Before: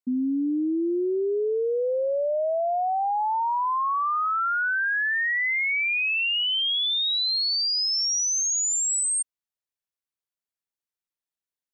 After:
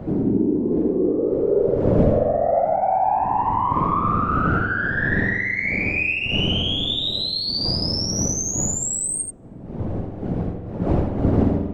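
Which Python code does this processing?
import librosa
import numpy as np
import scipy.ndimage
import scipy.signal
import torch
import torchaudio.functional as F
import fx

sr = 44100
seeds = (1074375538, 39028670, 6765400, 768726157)

p1 = fx.dmg_wind(x, sr, seeds[0], corner_hz=140.0, level_db=-23.0)
p2 = scipy.signal.sosfilt(scipy.signal.butter(2, 100.0, 'highpass', fs=sr, output='sos'), p1)
p3 = fx.peak_eq(p2, sr, hz=600.0, db=7.0, octaves=0.77)
p4 = fx.rider(p3, sr, range_db=4, speed_s=0.5)
p5 = fx.cheby_harmonics(p4, sr, harmonics=(2, 7), levels_db=(-19, -32), full_scale_db=-4.5)
p6 = fx.whisperise(p5, sr, seeds[1])
p7 = p6 + fx.echo_single(p6, sr, ms=82, db=-5.5, dry=0)
y = fx.rev_spring(p7, sr, rt60_s=1.5, pass_ms=(46,), chirp_ms=75, drr_db=6.0)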